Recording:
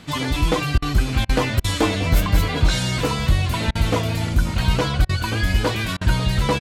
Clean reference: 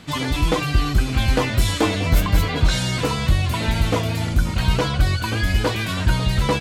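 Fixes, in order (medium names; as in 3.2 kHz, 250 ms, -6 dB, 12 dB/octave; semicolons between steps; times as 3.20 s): interpolate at 0.78/1.25/1.60/3.71/5.05/5.97 s, 41 ms; inverse comb 844 ms -19.5 dB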